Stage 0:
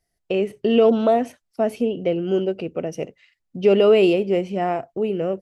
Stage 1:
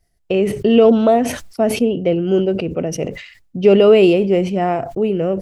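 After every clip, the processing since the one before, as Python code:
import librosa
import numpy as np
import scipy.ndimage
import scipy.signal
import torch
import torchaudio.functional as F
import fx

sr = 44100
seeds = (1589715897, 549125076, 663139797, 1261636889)

y = fx.low_shelf(x, sr, hz=140.0, db=9.5)
y = fx.sustainer(y, sr, db_per_s=82.0)
y = y * librosa.db_to_amplitude(3.5)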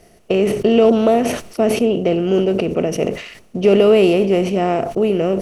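y = fx.bin_compress(x, sr, power=0.6)
y = y * librosa.db_to_amplitude(-3.5)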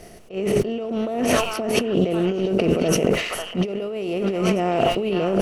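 y = fx.echo_stepped(x, sr, ms=544, hz=1300.0, octaves=1.4, feedback_pct=70, wet_db=-2.0)
y = fx.over_compress(y, sr, threshold_db=-22.0, ratio=-1.0)
y = fx.attack_slew(y, sr, db_per_s=220.0)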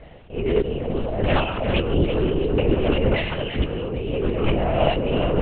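y = x + 10.0 ** (-10.0 / 20.0) * np.pad(x, (int(341 * sr / 1000.0), 0))[:len(x)]
y = fx.lpc_vocoder(y, sr, seeds[0], excitation='whisper', order=8)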